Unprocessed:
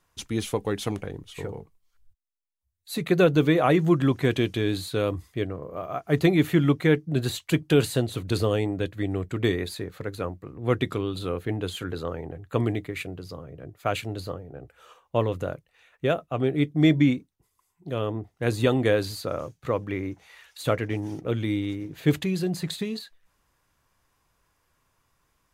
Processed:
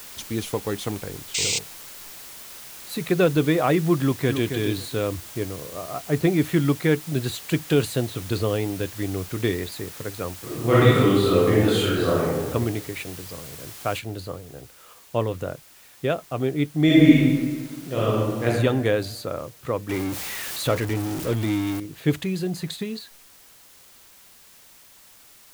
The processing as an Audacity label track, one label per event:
1.340000	1.590000	painted sound noise 2000–8500 Hz -24 dBFS
4.000000	4.530000	echo throw 0.27 s, feedback 20%, level -7.5 dB
5.070000	6.420000	high shelf 3600 Hz -11 dB
8.100000	9.720000	LPF 5800 Hz
10.380000	12.450000	reverb throw, RT60 1.2 s, DRR -10.5 dB
13.990000	13.990000	noise floor step -41 dB -51 dB
16.850000	18.460000	reverb throw, RT60 1.5 s, DRR -6.5 dB
19.890000	21.800000	zero-crossing step of -27 dBFS

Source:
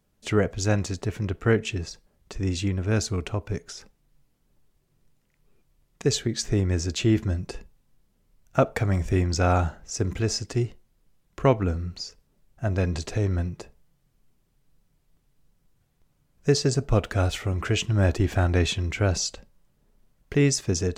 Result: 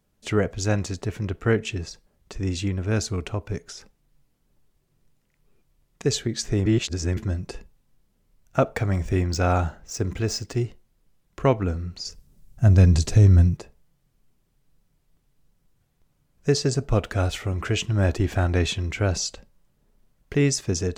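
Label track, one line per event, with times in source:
6.660000	7.170000	reverse
8.720000	10.630000	median filter over 3 samples
12.050000	13.570000	tone controls bass +12 dB, treble +9 dB

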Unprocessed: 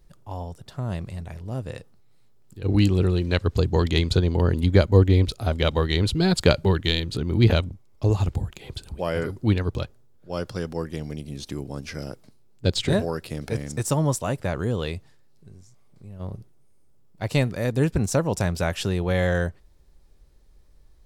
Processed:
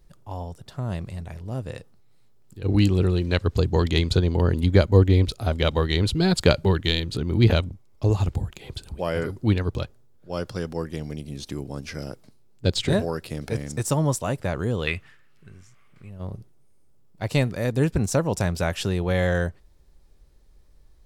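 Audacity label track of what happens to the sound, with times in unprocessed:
14.870000	16.100000	band shelf 1900 Hz +13.5 dB

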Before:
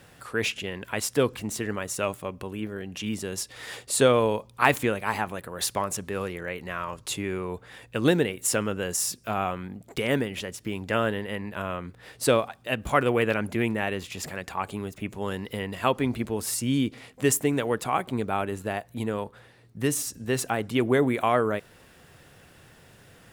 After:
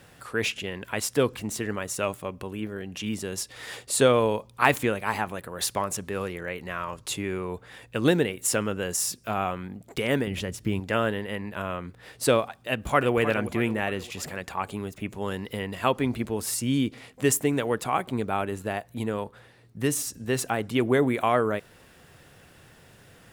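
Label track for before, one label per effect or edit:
10.270000	10.800000	low shelf 210 Hz +11 dB
12.700000	13.170000	echo throw 0.31 s, feedback 50%, level -11.5 dB

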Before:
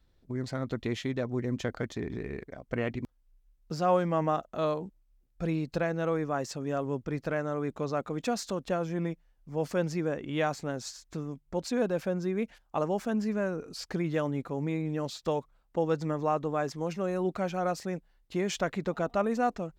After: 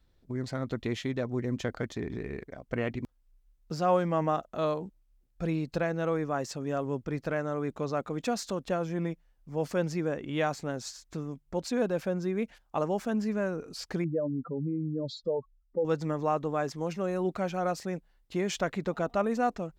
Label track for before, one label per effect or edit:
14.040000	15.850000	spectral contrast raised exponent 2.6

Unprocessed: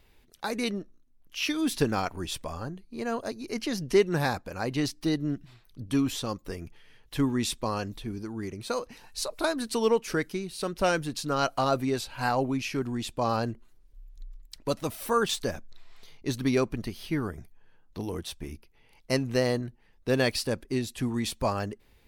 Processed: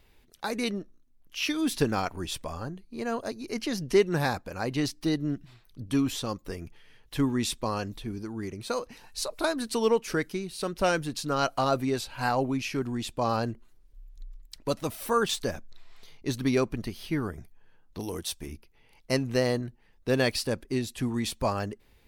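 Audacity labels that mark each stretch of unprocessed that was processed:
17.990000	18.460000	tone controls bass -3 dB, treble +8 dB

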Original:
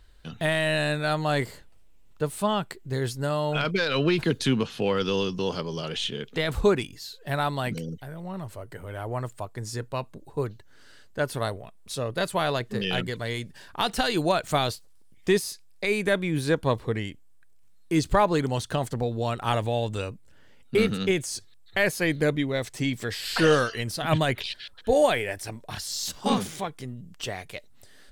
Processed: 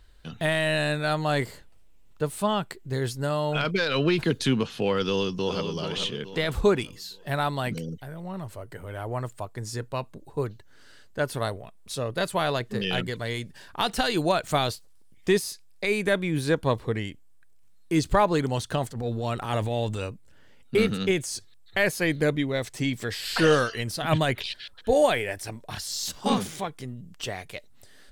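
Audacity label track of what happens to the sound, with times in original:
5.040000	5.630000	echo throw 0.43 s, feedback 40%, level -7 dB
18.870000	20.070000	transient shaper attack -11 dB, sustain +4 dB

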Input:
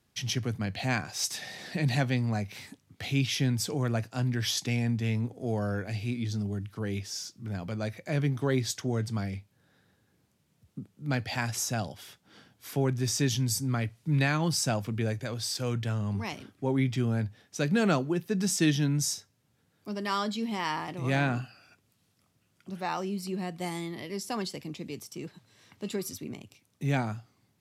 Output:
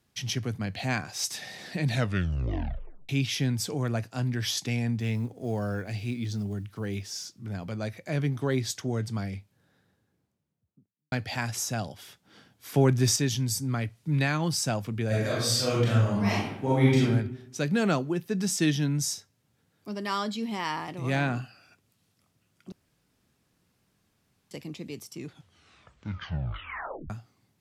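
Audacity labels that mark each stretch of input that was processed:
1.870000	1.870000	tape stop 1.22 s
5.000000	7.240000	block floating point 7-bit
9.350000	11.120000	studio fade out
12.740000	13.160000	gain +6 dB
15.070000	17.020000	reverb throw, RT60 0.81 s, DRR -7.5 dB
22.720000	24.510000	room tone
25.090000	25.090000	tape stop 2.01 s

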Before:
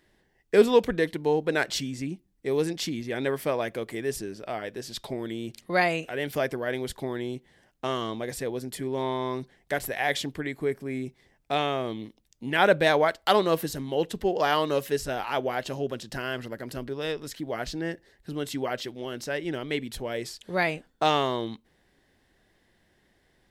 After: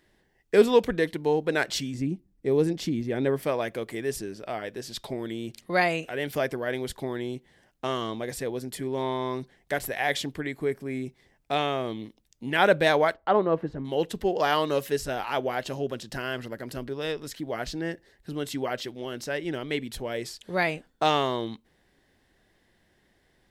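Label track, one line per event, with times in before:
1.940000	3.430000	tilt shelf lows +5.5 dB, about 740 Hz
13.140000	13.850000	LPF 1300 Hz

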